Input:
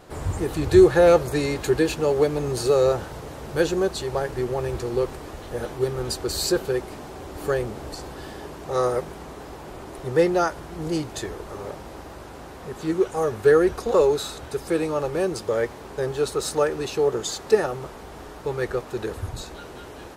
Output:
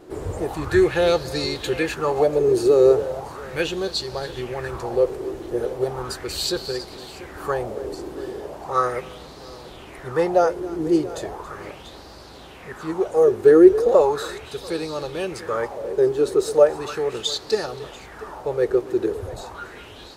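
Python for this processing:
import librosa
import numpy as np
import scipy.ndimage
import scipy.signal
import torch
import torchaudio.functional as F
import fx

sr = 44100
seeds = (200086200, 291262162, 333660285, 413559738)

y = fx.echo_multitap(x, sr, ms=(276, 689), db=(-17.0, -17.0))
y = fx.bell_lfo(y, sr, hz=0.37, low_hz=340.0, high_hz=4600.0, db=15)
y = F.gain(torch.from_numpy(y), -4.0).numpy()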